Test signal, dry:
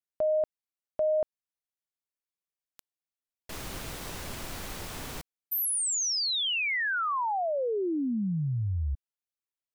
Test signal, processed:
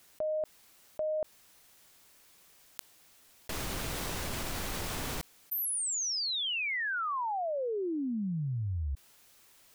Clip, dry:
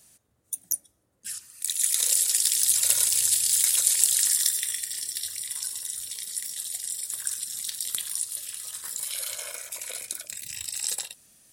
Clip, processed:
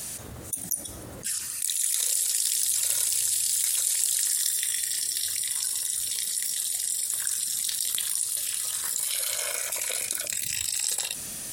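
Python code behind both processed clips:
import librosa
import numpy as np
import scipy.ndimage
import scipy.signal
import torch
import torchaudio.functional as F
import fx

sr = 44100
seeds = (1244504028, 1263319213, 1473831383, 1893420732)

y = fx.env_flatten(x, sr, amount_pct=70)
y = y * 10.0 ** (-6.5 / 20.0)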